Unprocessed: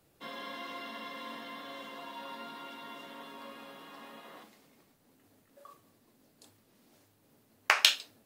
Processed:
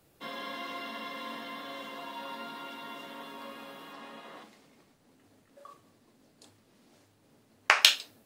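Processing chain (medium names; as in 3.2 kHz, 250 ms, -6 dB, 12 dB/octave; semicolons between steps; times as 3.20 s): 3.93–7.82 s: peaking EQ 14 kHz -11.5 dB 0.58 oct; trim +3 dB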